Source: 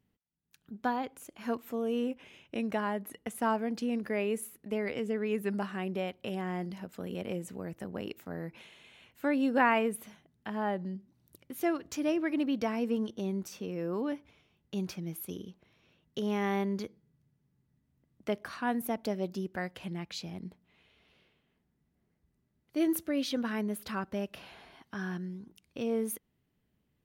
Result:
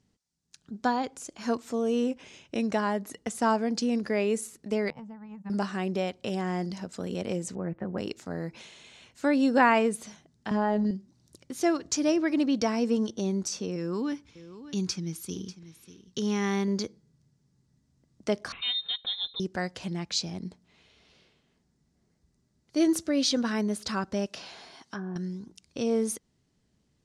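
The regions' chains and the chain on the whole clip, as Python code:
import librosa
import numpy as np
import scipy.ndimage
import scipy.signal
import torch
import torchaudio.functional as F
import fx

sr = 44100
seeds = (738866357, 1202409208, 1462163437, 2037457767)

y = fx.chain(x, sr, fx.double_bandpass(hz=380.0, octaves=2.4),
    fx.transient(attack_db=11, sustain_db=-9), at=(4.9, 5.5))
y = fx.chain(y, sr, fx.lowpass(hz=2100.0, slope=24),
    fx.comb(ms=5.6, depth=0.41), at=(7.55, 7.98))
y = fx.chain(y, sr, fx.robotise(hz=210.0),
    fx.air_absorb(metres=58.0),
    fx.env_flatten(amount_pct=100), at=(10.51, 10.91))
y = fx.chain(y, sr, fx.peak_eq(hz=640.0, db=-12.5, octaves=0.71),
    fx.echo_single(ms=593, db=-15.0), at=(13.76, 16.68))
y = fx.chain(y, sr, fx.freq_invert(carrier_hz=3900),
    fx.high_shelf(hz=2400.0, db=-7.5),
    fx.notch_comb(f0_hz=310.0), at=(18.52, 19.4))
y = fx.chain(y, sr, fx.env_lowpass_down(base_hz=600.0, full_db=-33.5),
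    fx.highpass(hz=220.0, slope=6),
    fx.high_shelf(hz=6600.0, db=6.5), at=(24.26, 25.16))
y = scipy.signal.sosfilt(scipy.signal.butter(4, 8100.0, 'lowpass', fs=sr, output='sos'), y)
y = fx.high_shelf_res(y, sr, hz=3800.0, db=8.0, q=1.5)
y = y * 10.0 ** (5.0 / 20.0)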